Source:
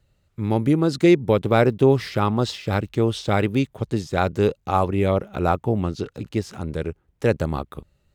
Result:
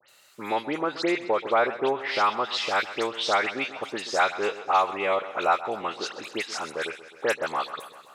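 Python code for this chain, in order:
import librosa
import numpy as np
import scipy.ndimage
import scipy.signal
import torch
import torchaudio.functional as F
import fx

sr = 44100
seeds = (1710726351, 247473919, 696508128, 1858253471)

p1 = fx.env_lowpass_down(x, sr, base_hz=1300.0, full_db=-13.5)
p2 = scipy.signal.sosfilt(scipy.signal.butter(2, 910.0, 'highpass', fs=sr, output='sos'), p1)
p3 = fx.high_shelf(p2, sr, hz=4500.0, db=8.5)
p4 = fx.dispersion(p3, sr, late='highs', ms=88.0, hz=2600.0)
p5 = p4 + fx.echo_feedback(p4, sr, ms=129, feedback_pct=54, wet_db=-16.0, dry=0)
p6 = fx.band_squash(p5, sr, depth_pct=40)
y = F.gain(torch.from_numpy(p6), 5.0).numpy()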